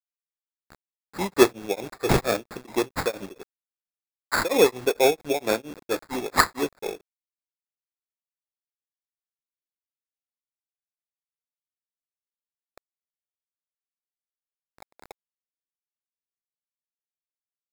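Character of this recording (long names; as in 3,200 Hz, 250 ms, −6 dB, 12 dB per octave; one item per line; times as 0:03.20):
a quantiser's noise floor 8 bits, dither none
tremolo triangle 4.4 Hz, depth 100%
aliases and images of a low sample rate 3,000 Hz, jitter 0%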